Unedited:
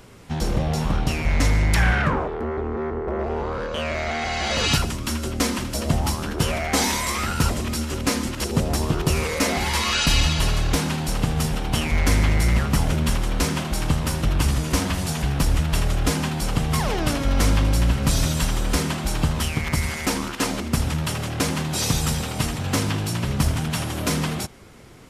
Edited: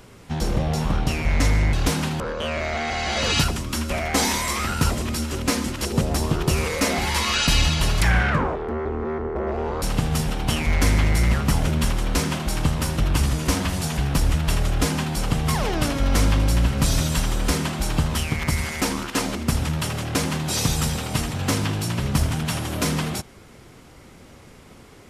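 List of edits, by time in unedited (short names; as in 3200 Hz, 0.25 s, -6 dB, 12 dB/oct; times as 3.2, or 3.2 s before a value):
1.73–3.54 swap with 10.6–11.07
5.24–6.49 cut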